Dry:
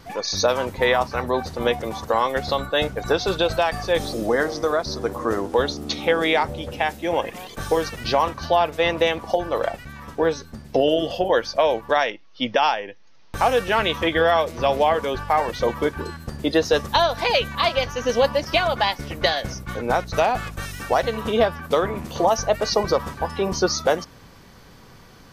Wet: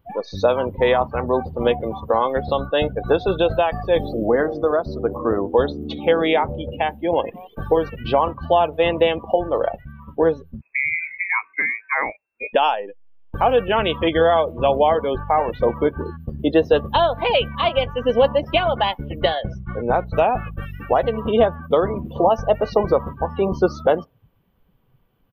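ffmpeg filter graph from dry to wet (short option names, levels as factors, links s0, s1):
-filter_complex "[0:a]asettb=1/sr,asplit=3[s0][s1][s2];[s0]atrim=end=10.614[s3];[s1]atrim=start=10.61:end=12.53,asetpts=PTS-STARTPTS,afade=t=in:d=0.004:c=qsin,afade=t=out:st=1.916:d=0.004:c=qsin,aemphasis=mode=production:type=bsi,lowpass=f=2300:t=q:w=0.5098,lowpass=f=2300:t=q:w=0.6013,lowpass=f=2300:t=q:w=0.9,lowpass=f=2300:t=q:w=2.563,afreqshift=-2700[s4];[s2]atrim=start=12.526[s5];[s3][s4]acrossfade=d=0.004:c1=hsin:c2=qsin[s6];[s6][s5]acrossfade=d=0.004:c1=qsin:c2=hsin,asettb=1/sr,asplit=3[s7][s8][s9];[s7]atrim=end=19.274[s10];[s8]atrim=start=19.27:end=19.98,asetpts=PTS-STARTPTS,afade=t=in:d=0.004:c=qsin,afade=t=out:st=0.706:d=0.004:c=qsin,lowpass=f=8400:w=0.5412,lowpass=f=8400:w=1.3066,bandreject=f=270:w=6.7[s11];[s9]atrim=start=19.976[s12];[s10][s11]acrossfade=d=0.004:c1=hsin:c2=qsin[s13];[s13][s12]acrossfade=d=0.004:c1=qsin:c2=hsin,afftdn=nr=22:nf=-30,firequalizer=gain_entry='entry(500,0);entry(1900,-8);entry(3000,0);entry(4500,-20);entry(6700,-25);entry(14000,8)':delay=0.05:min_phase=1,volume=1.5"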